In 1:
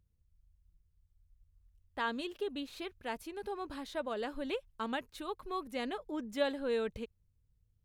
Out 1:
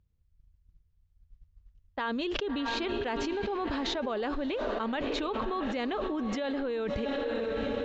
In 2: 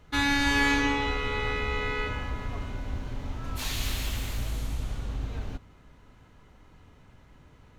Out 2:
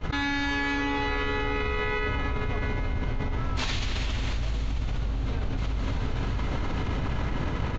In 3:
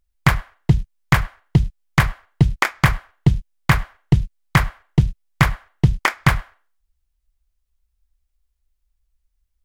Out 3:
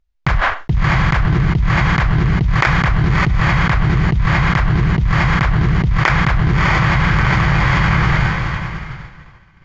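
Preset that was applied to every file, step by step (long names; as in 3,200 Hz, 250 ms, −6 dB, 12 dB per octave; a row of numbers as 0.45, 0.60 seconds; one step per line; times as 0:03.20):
high-frequency loss of the air 110 metres
downsampling to 16,000 Hz
feedback delay with all-pass diffusion 653 ms, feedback 41%, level −13.5 dB
downward expander −46 dBFS
envelope flattener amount 100%
level −4.5 dB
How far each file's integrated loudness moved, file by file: +6.5, 0.0, +5.0 LU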